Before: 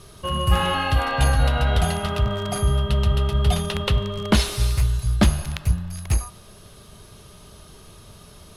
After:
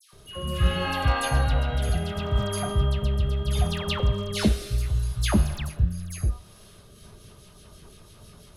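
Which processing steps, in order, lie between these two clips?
rotating-speaker cabinet horn 0.7 Hz, later 6 Hz, at 0:06.45
all-pass dispersion lows, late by 130 ms, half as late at 1,700 Hz
level −2 dB

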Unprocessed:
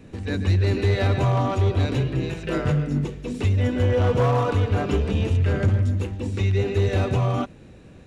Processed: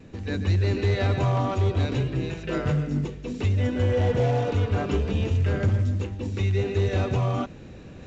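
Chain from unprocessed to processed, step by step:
reversed playback
upward compression, threshold −32 dBFS
reversed playback
pitch vibrato 0.39 Hz 9.2 cents
healed spectral selection 0:03.95–0:04.58, 930–2,000 Hz
level −2.5 dB
A-law companding 128 kbit/s 16,000 Hz

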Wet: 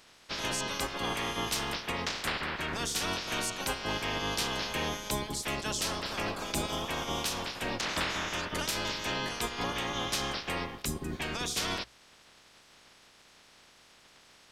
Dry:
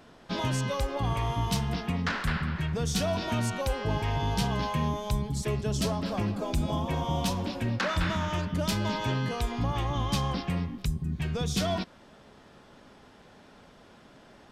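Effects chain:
ceiling on every frequency bin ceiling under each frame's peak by 25 dB
mains-hum notches 60/120 Hz
level −4.5 dB

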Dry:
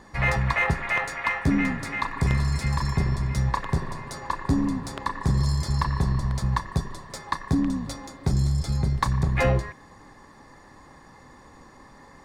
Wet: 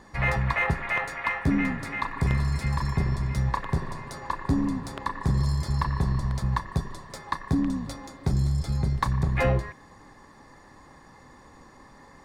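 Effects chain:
dynamic equaliser 6,500 Hz, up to −5 dB, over −46 dBFS, Q 0.85
level −1.5 dB

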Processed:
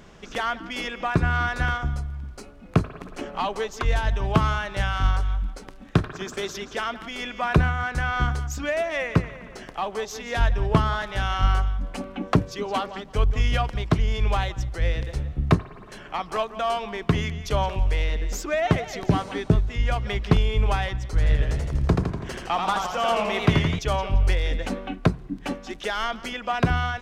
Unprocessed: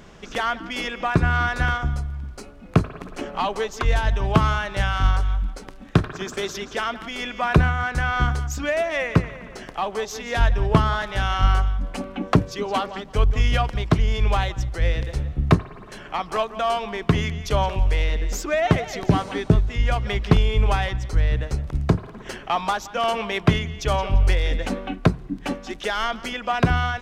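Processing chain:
0:21.07–0:23.79: feedback echo with a swinging delay time 83 ms, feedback 61%, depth 133 cents, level −3.5 dB
level −2.5 dB

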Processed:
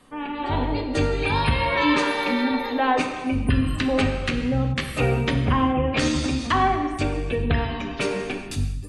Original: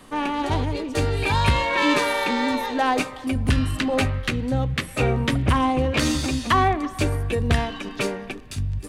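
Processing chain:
gate on every frequency bin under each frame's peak −30 dB strong
reverb whose tail is shaped and stops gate 450 ms falling, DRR 3.5 dB
automatic gain control gain up to 11.5 dB
level −8 dB

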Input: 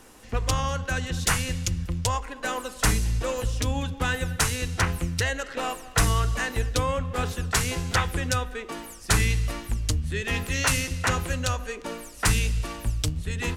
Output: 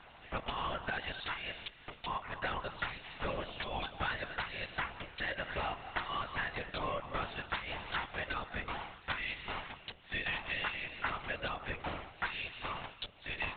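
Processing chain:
high-pass filter 530 Hz 24 dB per octave
downward compressor 6 to 1, threshold −33 dBFS, peak gain reduction 13.5 dB
linear-prediction vocoder at 8 kHz whisper

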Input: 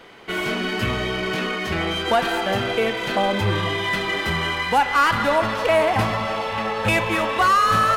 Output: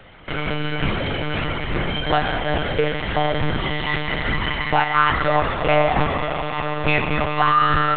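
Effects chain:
low-shelf EQ 120 Hz +6.5 dB
convolution reverb RT60 1.4 s, pre-delay 6 ms, DRR 10.5 dB
one-pitch LPC vocoder at 8 kHz 150 Hz

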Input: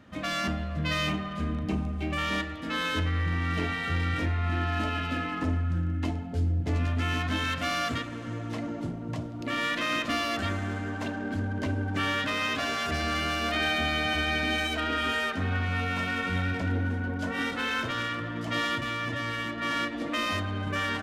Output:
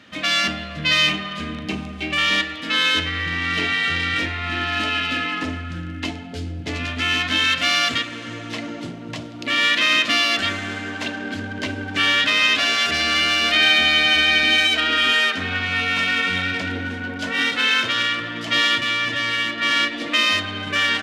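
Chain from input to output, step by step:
meter weighting curve D
level +4 dB

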